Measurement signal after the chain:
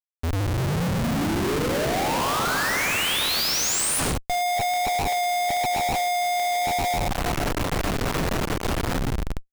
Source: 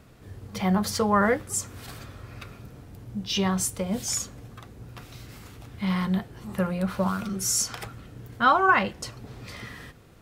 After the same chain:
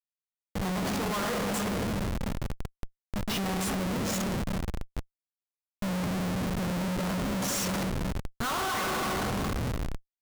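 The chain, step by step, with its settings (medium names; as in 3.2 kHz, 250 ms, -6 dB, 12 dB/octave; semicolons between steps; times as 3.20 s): on a send: frequency-shifting echo 186 ms, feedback 40%, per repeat +78 Hz, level -13.5 dB; on the sum: vibrato 1.1 Hz 11 cents; simulated room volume 160 m³, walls hard, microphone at 0.44 m; Schmitt trigger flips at -28 dBFS; trim -4.5 dB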